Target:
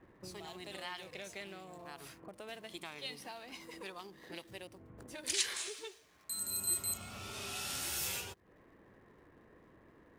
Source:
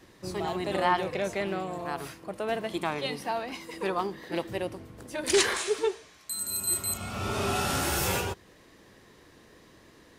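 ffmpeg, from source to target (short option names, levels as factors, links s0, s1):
-filter_complex "[0:a]acrossover=split=2200[s0][s1];[s0]acompressor=threshold=0.00794:ratio=6[s2];[s1]aeval=exprs='sgn(val(0))*max(abs(val(0))-0.00106,0)':c=same[s3];[s2][s3]amix=inputs=2:normalize=0,volume=0.531"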